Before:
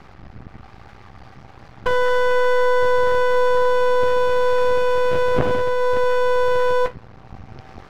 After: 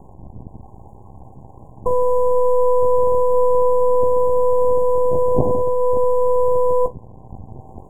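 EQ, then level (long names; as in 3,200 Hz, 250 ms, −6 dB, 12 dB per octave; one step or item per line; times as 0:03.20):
linear-phase brick-wall band-stop 1,100–6,600 Hz
parametric band 3,300 Hz −12.5 dB 2.1 octaves
+3.0 dB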